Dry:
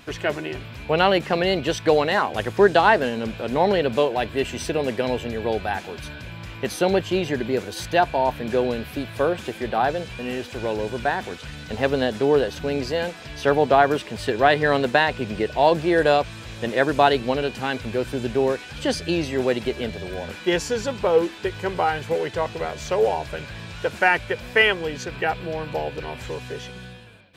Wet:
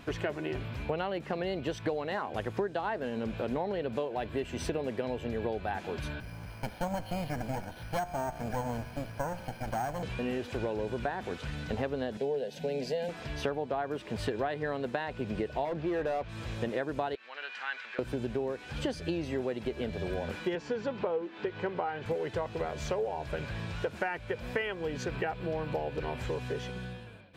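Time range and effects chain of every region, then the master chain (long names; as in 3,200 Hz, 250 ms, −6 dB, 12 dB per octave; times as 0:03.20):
0:06.20–0:10.03: lower of the sound and its delayed copy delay 1.3 ms + tuned comb filter 59 Hz, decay 1.8 s, mix 50% + bad sample-rate conversion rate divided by 6×, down filtered, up hold
0:12.17–0:13.09: high-pass filter 160 Hz + phaser with its sweep stopped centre 320 Hz, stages 6
0:15.65–0:16.29: low-pass filter 4,200 Hz + hard clipping −15.5 dBFS
0:17.15–0:17.99: downward compressor 2.5 to 1, threshold −26 dBFS + high-pass with resonance 1,600 Hz, resonance Q 1.8 + high-frequency loss of the air 120 metres
0:20.55–0:22.06: band-pass filter 160–3,600 Hz + upward compression, threshold −31 dBFS
whole clip: high-shelf EQ 2,000 Hz −8.5 dB; downward compressor 12 to 1, threshold −29 dBFS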